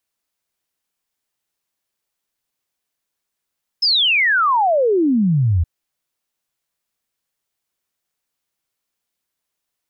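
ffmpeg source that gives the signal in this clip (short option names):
-f lavfi -i "aevalsrc='0.237*clip(min(t,1.82-t)/0.01,0,1)*sin(2*PI*5300*1.82/log(78/5300)*(exp(log(78/5300)*t/1.82)-1))':d=1.82:s=44100"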